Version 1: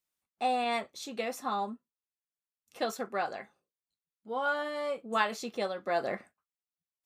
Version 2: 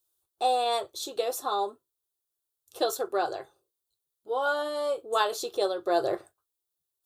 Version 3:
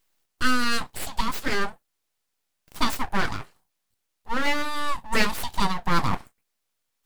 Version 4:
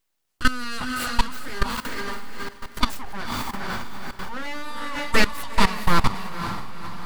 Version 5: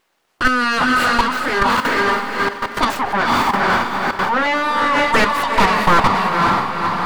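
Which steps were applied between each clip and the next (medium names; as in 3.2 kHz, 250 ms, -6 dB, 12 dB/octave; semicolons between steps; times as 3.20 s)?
FFT filter 130 Hz 0 dB, 220 Hz -26 dB, 350 Hz +5 dB, 520 Hz -2 dB, 1.5 kHz -6 dB, 2.1 kHz -19 dB, 3.6 kHz +1 dB, 5.4 kHz -3 dB, 11 kHz +5 dB; trim +7.5 dB
full-wave rectifier; trim +6.5 dB
echo that smears into a reverb 474 ms, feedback 50%, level -3.5 dB; level held to a coarse grid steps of 16 dB; trim +5 dB
overdrive pedal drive 31 dB, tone 1 kHz, clips at -1 dBFS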